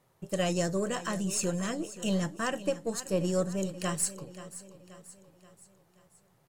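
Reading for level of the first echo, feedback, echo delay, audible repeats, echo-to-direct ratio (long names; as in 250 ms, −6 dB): −15.0 dB, 49%, 530 ms, 4, −14.0 dB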